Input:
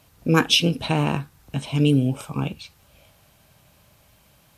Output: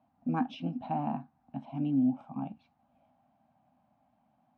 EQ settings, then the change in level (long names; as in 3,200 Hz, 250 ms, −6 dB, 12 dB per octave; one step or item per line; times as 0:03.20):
pair of resonant band-passes 430 Hz, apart 1.6 octaves
high-frequency loss of the air 120 metres
0.0 dB